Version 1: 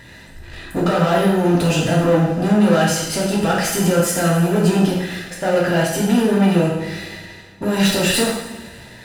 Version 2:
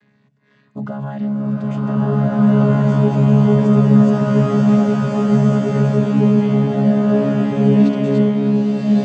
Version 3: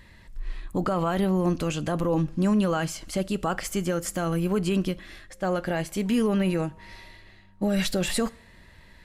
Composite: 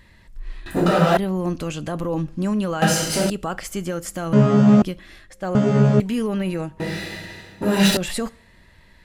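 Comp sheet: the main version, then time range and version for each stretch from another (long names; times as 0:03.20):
3
0:00.66–0:01.17: punch in from 1
0:02.82–0:03.30: punch in from 1
0:04.33–0:04.82: punch in from 2
0:05.55–0:06.00: punch in from 2
0:06.80–0:07.97: punch in from 1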